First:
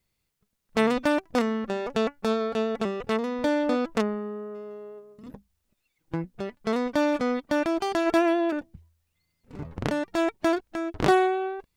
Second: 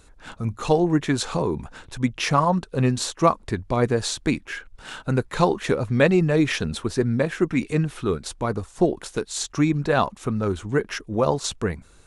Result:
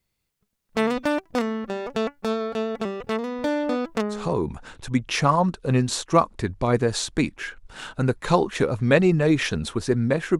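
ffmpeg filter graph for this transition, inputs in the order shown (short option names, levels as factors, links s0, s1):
-filter_complex "[0:a]apad=whole_dur=10.39,atrim=end=10.39,atrim=end=4.39,asetpts=PTS-STARTPTS[s0];[1:a]atrim=start=1.18:end=7.48,asetpts=PTS-STARTPTS[s1];[s0][s1]acrossfade=d=0.3:c1=qsin:c2=qsin"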